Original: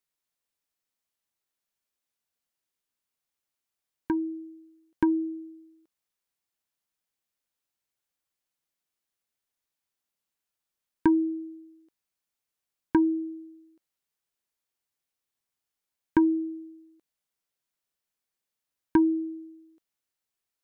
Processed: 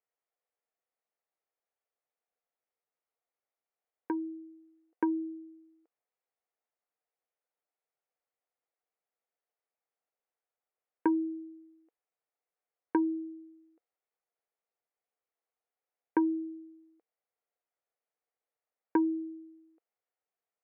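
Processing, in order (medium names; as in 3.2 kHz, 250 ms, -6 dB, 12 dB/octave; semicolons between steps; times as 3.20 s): cabinet simulation 460–2000 Hz, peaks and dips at 470 Hz +8 dB, 720 Hz +6 dB, 1 kHz -4 dB, 1.6 kHz -5 dB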